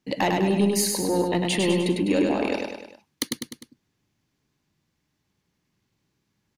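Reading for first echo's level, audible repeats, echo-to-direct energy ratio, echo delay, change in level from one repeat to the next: -3.5 dB, 4, -2.0 dB, 0.101 s, -5.5 dB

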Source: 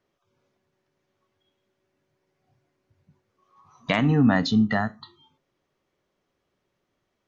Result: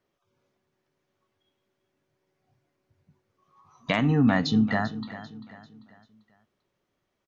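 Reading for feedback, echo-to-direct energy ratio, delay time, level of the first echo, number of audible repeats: 40%, -14.0 dB, 0.393 s, -14.5 dB, 3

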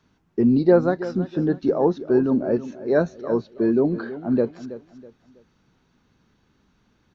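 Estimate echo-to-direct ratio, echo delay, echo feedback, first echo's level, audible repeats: -14.0 dB, 0.325 s, 33%, -14.5 dB, 3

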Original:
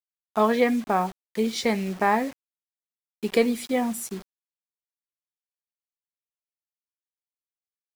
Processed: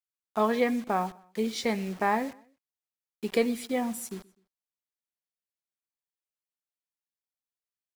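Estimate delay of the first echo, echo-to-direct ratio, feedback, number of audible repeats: 0.126 s, -23.0 dB, 38%, 2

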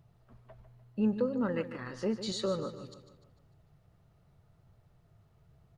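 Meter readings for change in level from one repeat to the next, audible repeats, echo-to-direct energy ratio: -6.5 dB, 4, -10.5 dB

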